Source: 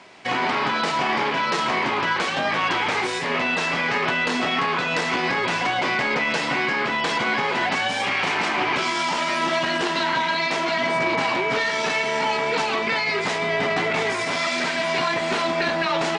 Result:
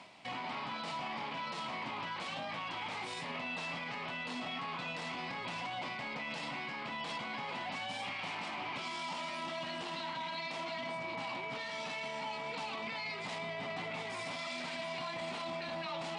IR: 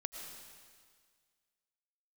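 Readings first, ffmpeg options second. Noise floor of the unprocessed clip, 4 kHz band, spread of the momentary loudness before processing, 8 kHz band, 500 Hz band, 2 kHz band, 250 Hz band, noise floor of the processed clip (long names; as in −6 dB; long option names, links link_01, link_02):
−25 dBFS, −15.5 dB, 1 LU, −18.5 dB, −18.0 dB, −18.5 dB, −17.0 dB, −42 dBFS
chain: -af "areverse,acompressor=mode=upward:threshold=-29dB:ratio=2.5,areverse,highpass=60,alimiter=limit=-22dB:level=0:latency=1:release=21,equalizer=frequency=400:width_type=o:width=0.67:gain=-11,equalizer=frequency=1600:width_type=o:width=0.67:gain=-9,equalizer=frequency=6300:width_type=o:width=0.67:gain=-6,volume=-7dB"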